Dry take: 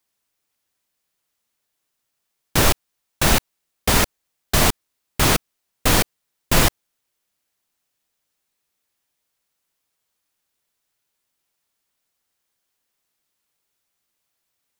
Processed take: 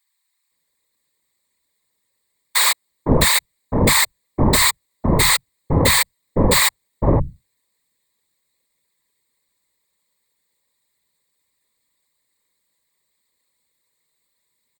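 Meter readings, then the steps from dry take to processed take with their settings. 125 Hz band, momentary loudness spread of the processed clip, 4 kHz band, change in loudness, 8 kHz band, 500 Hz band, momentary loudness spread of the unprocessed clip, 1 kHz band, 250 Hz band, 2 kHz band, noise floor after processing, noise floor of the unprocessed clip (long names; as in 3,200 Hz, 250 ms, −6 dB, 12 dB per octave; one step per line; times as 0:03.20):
+4.5 dB, 9 LU, +4.0 dB, +3.0 dB, +4.0 dB, +4.0 dB, 8 LU, +2.0 dB, +4.5 dB, +4.0 dB, −73 dBFS, −77 dBFS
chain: EQ curve with evenly spaced ripples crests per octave 0.99, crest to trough 15 dB
random phases in short frames
multiband delay without the direct sound highs, lows 510 ms, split 910 Hz
level +1.5 dB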